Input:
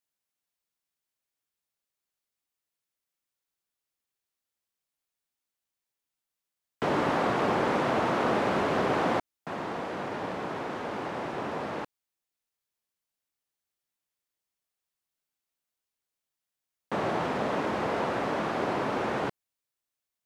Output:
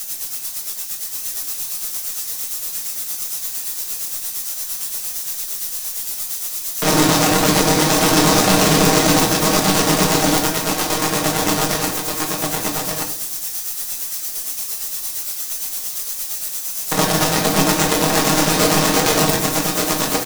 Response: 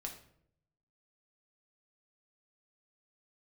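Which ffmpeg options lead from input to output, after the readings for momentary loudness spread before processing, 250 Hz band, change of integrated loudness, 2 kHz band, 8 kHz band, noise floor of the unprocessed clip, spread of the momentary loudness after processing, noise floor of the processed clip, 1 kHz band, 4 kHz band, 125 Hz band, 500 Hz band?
8 LU, +14.5 dB, +11.5 dB, +13.0 dB, +36.0 dB, under -85 dBFS, 9 LU, -29 dBFS, +10.5 dB, +23.5 dB, +17.0 dB, +10.5 dB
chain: -filter_complex "[0:a]aeval=exprs='val(0)+0.5*0.0178*sgn(val(0))':c=same,equalizer=f=6.2k:t=o:w=0.29:g=4.5,bandreject=f=6.5k:w=28,aecho=1:1:6.4:0.89,tremolo=f=8.7:d=0.57,acrossover=split=330|3000[a][b][c];[b]acompressor=threshold=-36dB:ratio=2.5[d];[a][d][c]amix=inputs=3:normalize=0,aeval=exprs='0.168*(cos(1*acos(clip(val(0)/0.168,-1,1)))-cos(1*PI/2))+0.00133*(cos(6*acos(clip(val(0)/0.168,-1,1)))-cos(6*PI/2))+0.0211*(cos(7*acos(clip(val(0)/0.168,-1,1)))-cos(7*PI/2))':c=same,bass=f=250:g=-2,treble=f=4k:g=14,aecho=1:1:1180:0.631[e];[1:a]atrim=start_sample=2205[f];[e][f]afir=irnorm=-1:irlink=0,alimiter=level_in=21.5dB:limit=-1dB:release=50:level=0:latency=1,volume=-1dB"

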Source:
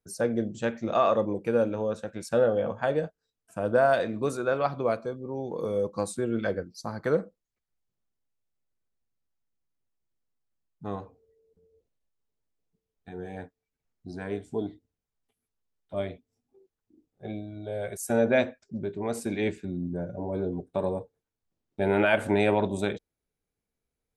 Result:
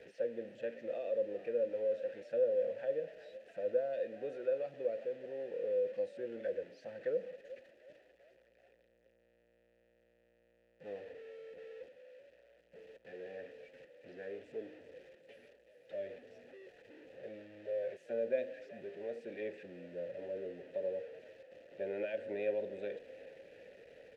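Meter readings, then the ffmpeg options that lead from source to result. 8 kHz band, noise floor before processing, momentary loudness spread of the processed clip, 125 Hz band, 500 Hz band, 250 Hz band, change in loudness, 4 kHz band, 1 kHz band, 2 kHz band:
under -30 dB, under -85 dBFS, 21 LU, -26.0 dB, -8.5 dB, -20.0 dB, -11.0 dB, under -15 dB, -24.5 dB, -18.0 dB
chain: -filter_complex "[0:a]aeval=exprs='val(0)+0.5*0.0237*sgn(val(0))':c=same,asplit=2[a][b];[b]asplit=4[c][d][e][f];[c]adelay=379,afreqshift=59,volume=-20dB[g];[d]adelay=758,afreqshift=118,volume=-26.2dB[h];[e]adelay=1137,afreqshift=177,volume=-32.4dB[i];[f]adelay=1516,afreqshift=236,volume=-38.6dB[j];[g][h][i][j]amix=inputs=4:normalize=0[k];[a][k]amix=inputs=2:normalize=0,acrusher=bits=7:mix=0:aa=0.000001,bass=f=250:g=3,treble=f=4k:g=3,acrossover=split=5500[l][m];[m]acompressor=threshold=-44dB:ratio=4:attack=1:release=60[n];[l][n]amix=inputs=2:normalize=0,highshelf=f=4.8k:g=-6.5,acrossover=split=470|3000[o][p][q];[p]acompressor=threshold=-29dB:ratio=6[r];[o][r][q]amix=inputs=3:normalize=0,asplit=3[s][t][u];[s]bandpass=f=530:t=q:w=8,volume=0dB[v];[t]bandpass=f=1.84k:t=q:w=8,volume=-6dB[w];[u]bandpass=f=2.48k:t=q:w=8,volume=-9dB[x];[v][w][x]amix=inputs=3:normalize=0,volume=-3.5dB"

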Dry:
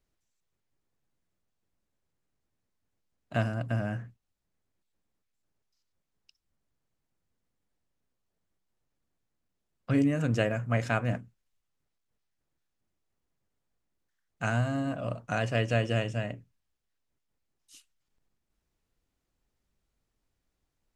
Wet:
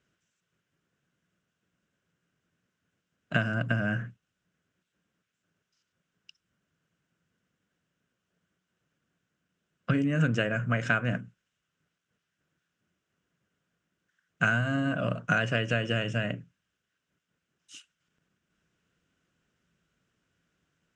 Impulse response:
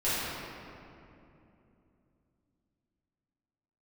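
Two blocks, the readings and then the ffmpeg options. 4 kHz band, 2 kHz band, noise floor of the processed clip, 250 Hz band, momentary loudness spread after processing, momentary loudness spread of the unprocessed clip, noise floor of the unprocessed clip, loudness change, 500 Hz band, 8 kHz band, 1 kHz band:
+4.5 dB, +7.0 dB, -83 dBFS, +0.5 dB, 9 LU, 9 LU, -82 dBFS, +1.5 dB, -1.0 dB, -1.0 dB, +1.5 dB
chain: -af "acompressor=threshold=-31dB:ratio=6,highpass=100,equalizer=f=170:t=q:w=4:g=8,equalizer=f=840:t=q:w=4:g=-8,equalizer=f=1.5k:t=q:w=4:g=10,equalizer=f=2.9k:t=q:w=4:g=6,equalizer=f=4.4k:t=q:w=4:g=-7,lowpass=f=7.6k:w=0.5412,lowpass=f=7.6k:w=1.3066,volume=6.5dB"

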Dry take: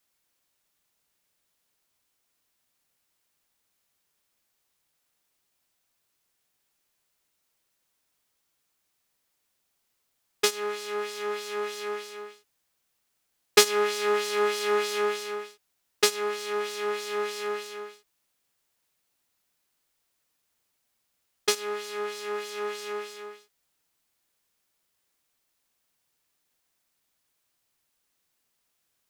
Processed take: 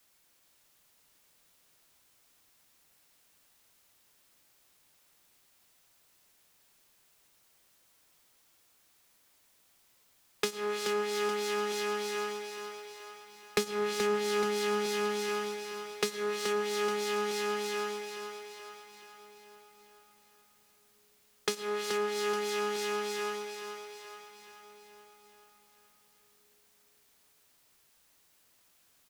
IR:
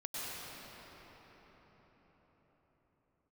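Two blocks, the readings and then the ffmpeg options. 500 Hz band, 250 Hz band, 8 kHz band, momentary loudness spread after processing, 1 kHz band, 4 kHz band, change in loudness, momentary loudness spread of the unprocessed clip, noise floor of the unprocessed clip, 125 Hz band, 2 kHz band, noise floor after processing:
-2.5 dB, +3.5 dB, -6.5 dB, 17 LU, -2.5 dB, -5.5 dB, -5.0 dB, 16 LU, -76 dBFS, n/a, -3.5 dB, -67 dBFS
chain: -filter_complex "[0:a]acrossover=split=210[a][b];[b]acompressor=threshold=-39dB:ratio=10[c];[a][c]amix=inputs=2:normalize=0,aecho=1:1:428|856|1284|1712|2140|2568|2996:0.447|0.246|0.135|0.0743|0.0409|0.0225|0.0124,asplit=2[d][e];[1:a]atrim=start_sample=2205[f];[e][f]afir=irnorm=-1:irlink=0,volume=-13.5dB[g];[d][g]amix=inputs=2:normalize=0,volume=7dB"

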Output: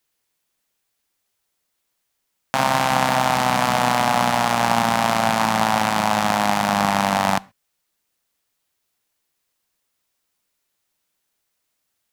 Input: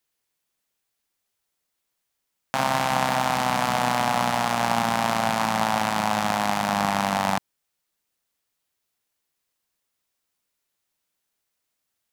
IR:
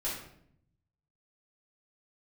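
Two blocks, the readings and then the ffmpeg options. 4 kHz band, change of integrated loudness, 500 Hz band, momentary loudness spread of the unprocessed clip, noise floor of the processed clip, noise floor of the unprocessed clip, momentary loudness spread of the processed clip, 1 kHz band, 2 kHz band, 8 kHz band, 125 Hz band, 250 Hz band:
+4.5 dB, +4.5 dB, +4.5 dB, 2 LU, -75 dBFS, -80 dBFS, 2 LU, +4.5 dB, +4.5 dB, +4.5 dB, +4.5 dB, +4.5 dB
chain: -filter_complex "[0:a]asplit=2[a][b];[1:a]atrim=start_sample=2205,atrim=end_sample=6174[c];[b][c]afir=irnorm=-1:irlink=0,volume=-24.5dB[d];[a][d]amix=inputs=2:normalize=0,volume=4dB"

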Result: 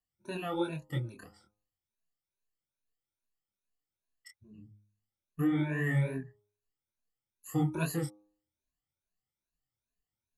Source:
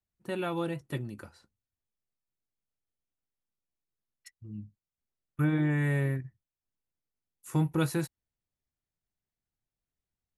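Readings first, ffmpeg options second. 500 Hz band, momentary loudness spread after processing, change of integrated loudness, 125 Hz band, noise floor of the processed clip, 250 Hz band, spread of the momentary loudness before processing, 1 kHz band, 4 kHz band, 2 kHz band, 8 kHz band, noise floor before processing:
-2.5 dB, 13 LU, -2.5 dB, -3.0 dB, under -85 dBFS, -2.0 dB, 18 LU, -1.5 dB, -2.0 dB, -1.5 dB, -0.5 dB, under -85 dBFS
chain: -af "afftfilt=real='re*pow(10,22/40*sin(2*PI*(1.5*log(max(b,1)*sr/1024/100)/log(2)-(2.4)*(pts-256)/sr)))':imag='im*pow(10,22/40*sin(2*PI*(1.5*log(max(b,1)*sr/1024/100)/log(2)-(2.4)*(pts-256)/sr)))':win_size=1024:overlap=0.75,flanger=delay=22.5:depth=5.2:speed=2.9,bandreject=f=103.5:t=h:w=4,bandreject=f=207:t=h:w=4,bandreject=f=310.5:t=h:w=4,bandreject=f=414:t=h:w=4,bandreject=f=517.5:t=h:w=4,bandreject=f=621:t=h:w=4,bandreject=f=724.5:t=h:w=4,bandreject=f=828:t=h:w=4,bandreject=f=931.5:t=h:w=4,bandreject=f=1.035k:t=h:w=4,bandreject=f=1.1385k:t=h:w=4,bandreject=f=1.242k:t=h:w=4,volume=-3.5dB"

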